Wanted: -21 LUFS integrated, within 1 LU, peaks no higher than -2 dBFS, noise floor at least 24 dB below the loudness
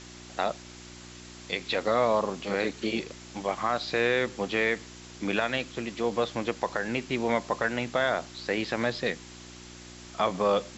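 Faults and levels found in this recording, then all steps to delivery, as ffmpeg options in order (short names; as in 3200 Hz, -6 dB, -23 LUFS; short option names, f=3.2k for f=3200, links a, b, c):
hum 60 Hz; harmonics up to 360 Hz; hum level -47 dBFS; noise floor -47 dBFS; noise floor target -53 dBFS; loudness -29.0 LUFS; peak -12.0 dBFS; loudness target -21.0 LUFS
-> -af "bandreject=f=60:t=h:w=4,bandreject=f=120:t=h:w=4,bandreject=f=180:t=h:w=4,bandreject=f=240:t=h:w=4,bandreject=f=300:t=h:w=4,bandreject=f=360:t=h:w=4"
-af "afftdn=nr=6:nf=-47"
-af "volume=8dB"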